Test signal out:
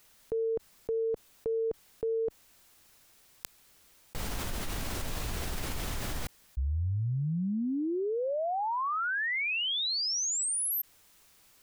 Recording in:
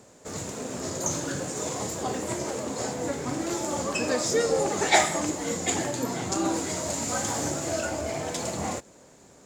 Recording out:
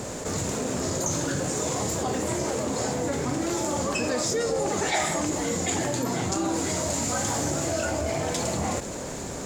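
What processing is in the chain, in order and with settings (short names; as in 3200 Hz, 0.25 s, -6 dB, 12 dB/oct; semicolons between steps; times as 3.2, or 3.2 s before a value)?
low shelf 82 Hz +9 dB; fast leveller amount 70%; gain -7.5 dB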